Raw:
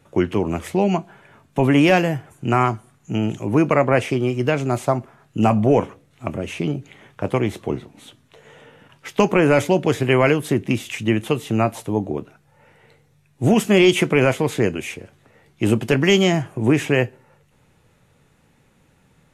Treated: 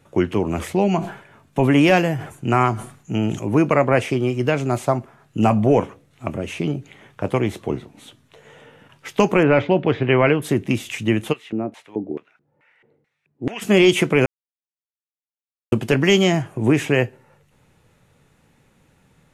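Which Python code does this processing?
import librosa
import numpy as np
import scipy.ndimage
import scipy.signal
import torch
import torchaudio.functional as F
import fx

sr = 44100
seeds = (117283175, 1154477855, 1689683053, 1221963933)

y = fx.sustainer(x, sr, db_per_s=110.0, at=(0.48, 3.46))
y = fx.lowpass(y, sr, hz=3400.0, slope=24, at=(9.43, 10.42))
y = fx.filter_lfo_bandpass(y, sr, shape='square', hz=2.3, low_hz=310.0, high_hz=2100.0, q=1.8, at=(11.32, 13.61), fade=0.02)
y = fx.edit(y, sr, fx.silence(start_s=14.26, length_s=1.46), tone=tone)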